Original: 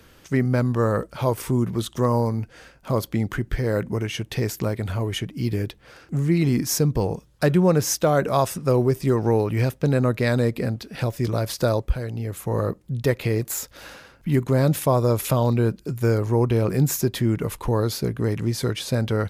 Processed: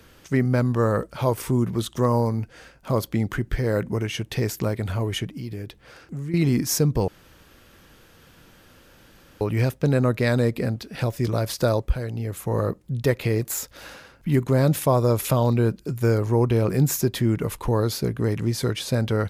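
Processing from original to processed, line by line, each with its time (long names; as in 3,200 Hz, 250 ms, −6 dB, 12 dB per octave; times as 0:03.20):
0:05.37–0:06.34: downward compressor 2.5 to 1, threshold −33 dBFS
0:07.08–0:09.41: fill with room tone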